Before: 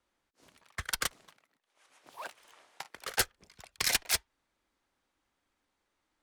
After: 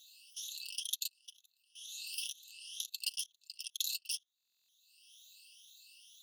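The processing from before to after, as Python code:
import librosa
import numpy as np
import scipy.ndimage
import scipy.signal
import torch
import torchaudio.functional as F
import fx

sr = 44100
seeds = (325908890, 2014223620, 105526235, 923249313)

y = fx.spec_ripple(x, sr, per_octave=1.2, drift_hz=2.1, depth_db=18)
y = fx.brickwall_highpass(y, sr, low_hz=2600.0)
y = fx.peak_eq(y, sr, hz=7500.0, db=-2.0, octaves=0.33)
y = fx.notch(y, sr, hz=7800.0, q=8.5)
y = y + 0.45 * np.pad(y, (int(5.7 * sr / 1000.0), 0))[:len(y)]
y = fx.level_steps(y, sr, step_db=19)
y = fx.buffer_glitch(y, sr, at_s=(4.36,), block=1024, repeats=13)
y = fx.band_squash(y, sr, depth_pct=100)
y = y * 10.0 ** (5.0 / 20.0)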